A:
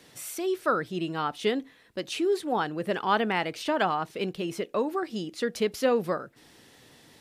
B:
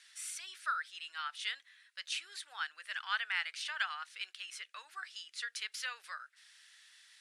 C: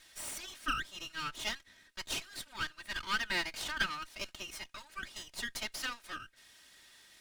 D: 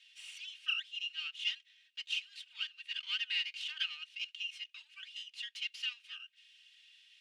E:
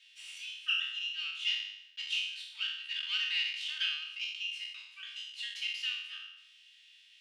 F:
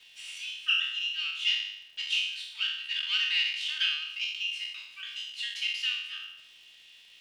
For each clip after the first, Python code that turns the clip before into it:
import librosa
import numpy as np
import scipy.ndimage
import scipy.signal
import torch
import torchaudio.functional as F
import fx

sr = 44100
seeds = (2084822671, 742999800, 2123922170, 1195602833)

y1 = scipy.signal.sosfilt(scipy.signal.ellip(3, 1.0, 80, [1500.0, 9900.0], 'bandpass', fs=sr, output='sos'), x)
y1 = y1 * 10.0 ** (-2.5 / 20.0)
y2 = fx.lower_of_two(y1, sr, delay_ms=3.2)
y2 = y2 * 10.0 ** (3.0 / 20.0)
y3 = fx.ladder_bandpass(y2, sr, hz=3000.0, resonance_pct=75)
y3 = y3 * 10.0 ** (5.5 / 20.0)
y4 = fx.spec_trails(y3, sr, decay_s=0.8)
y5 = fx.dmg_crackle(y4, sr, seeds[0], per_s=430.0, level_db=-59.0)
y5 = y5 * 10.0 ** (5.0 / 20.0)